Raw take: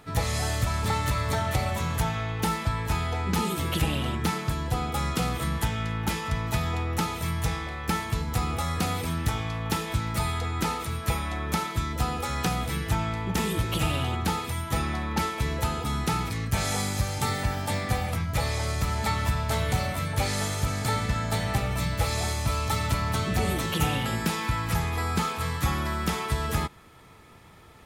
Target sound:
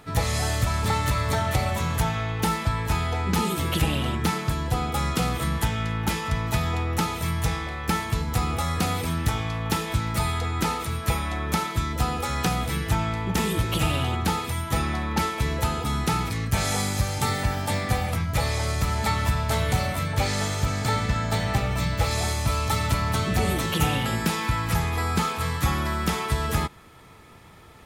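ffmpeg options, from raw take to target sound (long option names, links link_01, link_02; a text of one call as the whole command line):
ffmpeg -i in.wav -filter_complex "[0:a]asettb=1/sr,asplit=3[link_01][link_02][link_03];[link_01]atrim=end=20.034[link_04];[link_02]atrim=start=20.03:end=22.11,asetpts=PTS-STARTPTS,afade=type=in:duration=0.004:curve=qsin,afade=type=out:start_time=2.076:duration=0.004:curve=qsin,equalizer=frequency=11000:width_type=o:width=0.51:gain=-8.5[link_05];[link_03]atrim=start=22.106[link_06];[link_04][link_05]acrossfade=duration=0.004:curve1=hsin:curve2=qsin[link_07];[link_07][link_06]acrossfade=duration=0.004:curve1=qsin:curve2=hsin,volume=2.5dB" out.wav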